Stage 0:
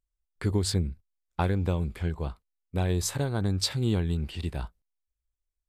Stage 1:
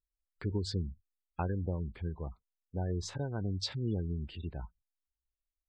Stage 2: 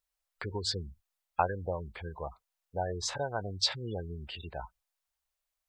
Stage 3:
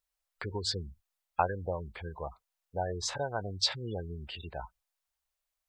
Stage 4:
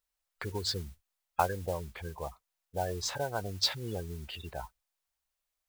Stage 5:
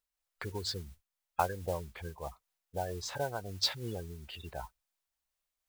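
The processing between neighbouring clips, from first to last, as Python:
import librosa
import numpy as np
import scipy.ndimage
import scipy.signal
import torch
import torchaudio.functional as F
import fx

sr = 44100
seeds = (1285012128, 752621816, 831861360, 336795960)

y1 = fx.spec_gate(x, sr, threshold_db=-25, keep='strong')
y1 = scipy.signal.sosfilt(scipy.signal.butter(4, 6000.0, 'lowpass', fs=sr, output='sos'), y1)
y1 = y1 * 10.0 ** (-7.5 / 20.0)
y2 = fx.low_shelf_res(y1, sr, hz=430.0, db=-13.0, q=1.5)
y2 = y2 * 10.0 ** (8.5 / 20.0)
y3 = y2
y4 = fx.mod_noise(y3, sr, seeds[0], snr_db=17)
y5 = fx.am_noise(y4, sr, seeds[1], hz=5.7, depth_pct=60)
y5 = y5 * 10.0 ** (1.0 / 20.0)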